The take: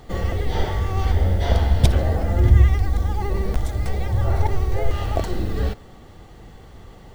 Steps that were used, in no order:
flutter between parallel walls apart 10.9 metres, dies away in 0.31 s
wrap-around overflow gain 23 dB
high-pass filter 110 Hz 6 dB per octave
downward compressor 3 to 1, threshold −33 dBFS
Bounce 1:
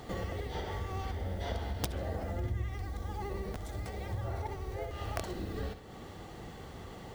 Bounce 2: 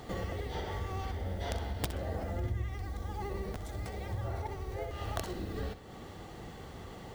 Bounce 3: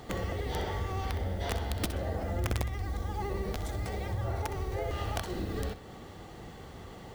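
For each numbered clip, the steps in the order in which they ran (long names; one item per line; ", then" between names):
flutter between parallel walls, then downward compressor, then high-pass filter, then wrap-around overflow
downward compressor, then high-pass filter, then wrap-around overflow, then flutter between parallel walls
high-pass filter, then downward compressor, then wrap-around overflow, then flutter between parallel walls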